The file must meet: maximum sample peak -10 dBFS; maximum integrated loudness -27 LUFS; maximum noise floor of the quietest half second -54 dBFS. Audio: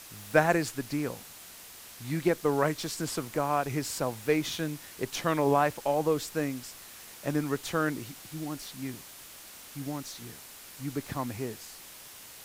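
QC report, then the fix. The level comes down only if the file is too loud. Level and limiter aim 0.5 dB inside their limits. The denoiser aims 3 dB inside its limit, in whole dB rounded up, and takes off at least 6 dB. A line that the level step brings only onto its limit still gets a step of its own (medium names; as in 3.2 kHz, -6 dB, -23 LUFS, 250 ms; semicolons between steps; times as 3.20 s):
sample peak -7.5 dBFS: fail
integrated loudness -31.0 LUFS: pass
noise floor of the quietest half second -48 dBFS: fail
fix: noise reduction 9 dB, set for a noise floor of -48 dBFS; peak limiter -10.5 dBFS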